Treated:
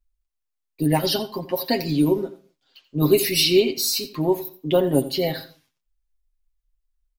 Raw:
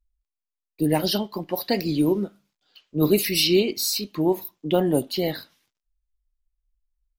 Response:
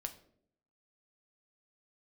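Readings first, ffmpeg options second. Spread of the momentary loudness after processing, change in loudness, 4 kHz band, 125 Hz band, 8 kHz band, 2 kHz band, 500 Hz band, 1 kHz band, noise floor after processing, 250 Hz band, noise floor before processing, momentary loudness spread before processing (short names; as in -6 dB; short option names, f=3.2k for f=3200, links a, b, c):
10 LU, +2.0 dB, +2.0 dB, +2.5 dB, +2.0 dB, +1.5 dB, +2.5 dB, +2.0 dB, -80 dBFS, +0.5 dB, under -85 dBFS, 10 LU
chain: -filter_complex "[0:a]aecho=1:1:7.5:0.7,asplit=2[a][b];[1:a]atrim=start_sample=2205,afade=t=out:st=0.24:d=0.01,atrim=end_sample=11025,adelay=86[c];[b][c]afir=irnorm=-1:irlink=0,volume=-13dB[d];[a][d]amix=inputs=2:normalize=0"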